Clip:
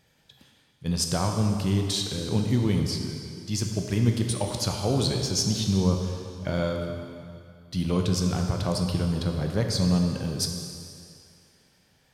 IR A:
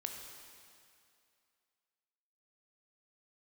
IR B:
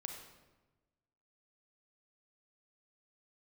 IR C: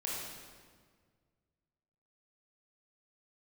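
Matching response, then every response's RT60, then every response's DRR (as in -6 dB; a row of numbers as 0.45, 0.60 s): A; 2.5, 1.2, 1.7 s; 2.5, 3.0, -5.5 dB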